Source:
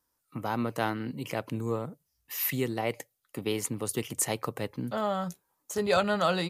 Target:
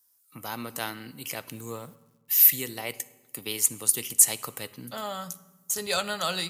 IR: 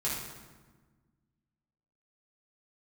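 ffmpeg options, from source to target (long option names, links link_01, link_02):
-filter_complex "[0:a]crystalizer=i=8.5:c=0,asettb=1/sr,asplit=3[link_01][link_02][link_03];[link_01]atrim=end=1.484[link_04];[link_02]atrim=start=1.48:end=2.58,asetpts=PTS-STARTPTS,afade=type=in:duration=0.004:curve=qsin,afade=type=out:start_time=1.096:duration=0.004:curve=qsin,acrusher=bits=7:mix=0:aa=0.5[link_05];[link_03]atrim=start=2.576[link_06];[link_04][link_05]acrossfade=duration=0.004:curve1=hsin:curve2=qsin[link_07];[link_07][link_06]acrossfade=duration=0.004:curve1=qsin:curve2=hsin,asplit=2[link_08][link_09];[1:a]atrim=start_sample=2205,asetrate=52920,aresample=44100[link_10];[link_09][link_10]afir=irnorm=-1:irlink=0,volume=-18.5dB[link_11];[link_08][link_11]amix=inputs=2:normalize=0,volume=-9dB"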